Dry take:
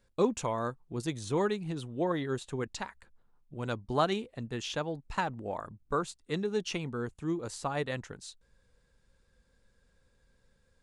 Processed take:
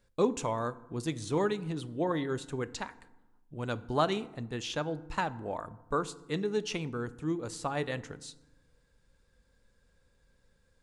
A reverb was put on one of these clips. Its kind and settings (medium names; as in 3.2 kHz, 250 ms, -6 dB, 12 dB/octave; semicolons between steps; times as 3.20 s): FDN reverb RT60 1 s, low-frequency decay 1.35×, high-frequency decay 0.55×, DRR 14.5 dB